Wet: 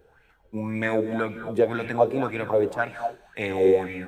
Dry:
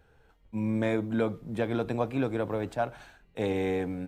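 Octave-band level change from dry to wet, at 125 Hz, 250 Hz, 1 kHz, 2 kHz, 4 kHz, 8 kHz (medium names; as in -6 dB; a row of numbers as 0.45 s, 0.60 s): -1.0 dB, +1.5 dB, +7.0 dB, +8.5 dB, +2.5 dB, no reading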